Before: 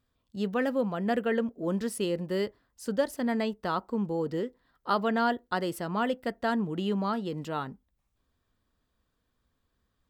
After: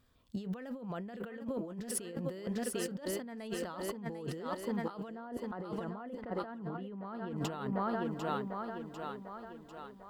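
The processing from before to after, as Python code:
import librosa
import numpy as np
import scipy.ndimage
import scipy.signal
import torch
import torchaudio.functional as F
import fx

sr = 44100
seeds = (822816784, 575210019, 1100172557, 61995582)

y = fx.lowpass(x, sr, hz=fx.line((5.09, 1100.0), (7.35, 2100.0)), slope=12, at=(5.09, 7.35), fade=0.02)
y = fx.echo_thinned(y, sr, ms=747, feedback_pct=51, hz=150.0, wet_db=-9.5)
y = fx.over_compress(y, sr, threshold_db=-39.0, ratio=-1.0)
y = y * 10.0 ** (-1.0 / 20.0)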